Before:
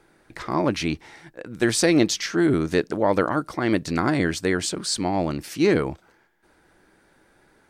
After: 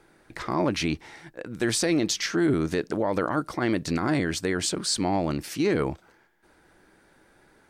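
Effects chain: peak limiter -15 dBFS, peak gain reduction 9 dB

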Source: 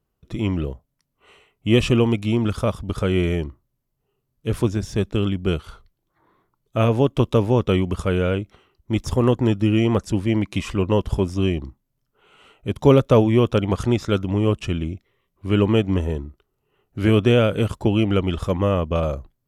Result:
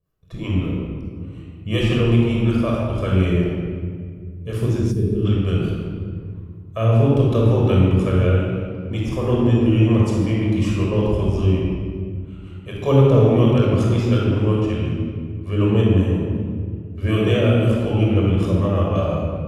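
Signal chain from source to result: harmonic tremolo 5.4 Hz, depth 70%, crossover 500 Hz; simulated room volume 3300 m³, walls mixed, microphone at 5.7 m; time-frequency box 4.92–5.25 s, 490–8300 Hz -11 dB; trim -5 dB

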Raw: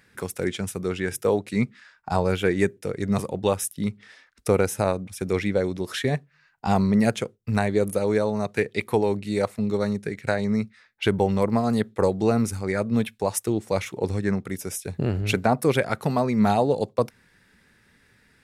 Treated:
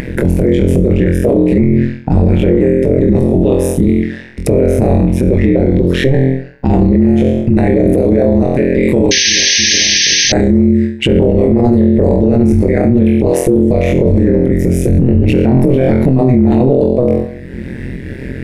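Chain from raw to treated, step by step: FFT filter 350 Hz 0 dB, 1.3 kHz -29 dB, 1.9 kHz -13 dB, 4.9 kHz -27 dB; flutter echo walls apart 3.9 m, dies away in 0.5 s; upward compressor, threshold -44 dBFS; AM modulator 130 Hz, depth 95%; 9.11–10.32 s: painted sound noise 1.6–6.4 kHz -18 dBFS; 8.83–11.08 s: peaking EQ 7.8 kHz +14.5 dB 0.38 oct; loudness maximiser +36 dB; trim -1 dB

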